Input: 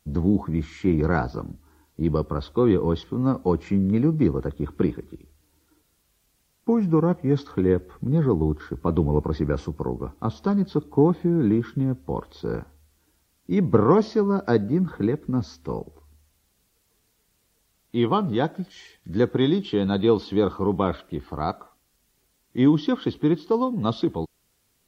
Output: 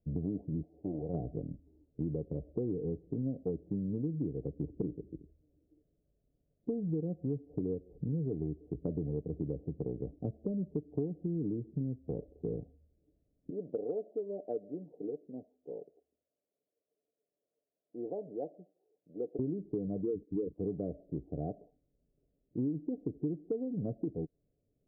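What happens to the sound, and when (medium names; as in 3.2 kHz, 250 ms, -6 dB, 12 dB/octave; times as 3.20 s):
0.62–1.13 s: formants flattened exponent 0.1
13.50–19.39 s: high-pass 610 Hz
20.01–20.58 s: resonances exaggerated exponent 3
whole clip: steep low-pass 660 Hz 72 dB/octave; comb 6.9 ms, depth 31%; compression 6:1, threshold -27 dBFS; trim -5 dB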